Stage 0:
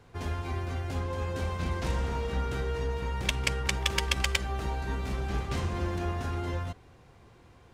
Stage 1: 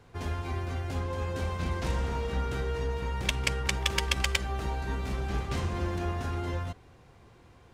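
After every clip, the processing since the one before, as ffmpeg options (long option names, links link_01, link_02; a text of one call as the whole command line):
ffmpeg -i in.wav -af anull out.wav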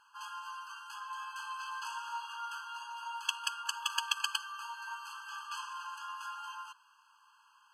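ffmpeg -i in.wav -filter_complex "[0:a]asplit=2[link_01][link_02];[link_02]asoftclip=type=tanh:threshold=-24.5dB,volume=-4dB[link_03];[link_01][link_03]amix=inputs=2:normalize=0,afftfilt=real='re*eq(mod(floor(b*sr/1024/840),2),1)':imag='im*eq(mod(floor(b*sr/1024/840),2),1)':win_size=1024:overlap=0.75,volume=-3.5dB" out.wav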